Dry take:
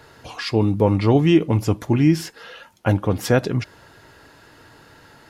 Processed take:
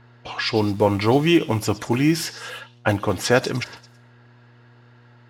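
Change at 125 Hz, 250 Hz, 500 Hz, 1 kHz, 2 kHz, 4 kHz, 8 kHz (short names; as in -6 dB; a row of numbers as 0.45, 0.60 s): -5.0, -2.5, 0.0, +3.0, +4.5, +5.0, +5.0 dB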